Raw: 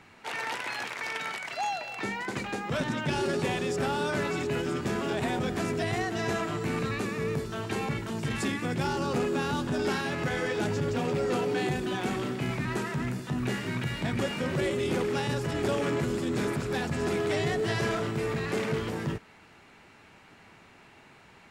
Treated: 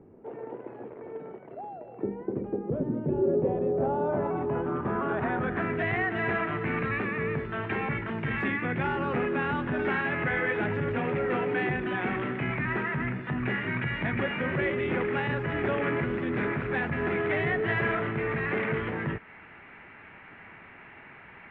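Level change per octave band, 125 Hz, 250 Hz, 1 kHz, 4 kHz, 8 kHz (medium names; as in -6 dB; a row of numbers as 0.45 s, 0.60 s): -0.5 dB, 0.0 dB, +1.0 dB, -8.5 dB, under -35 dB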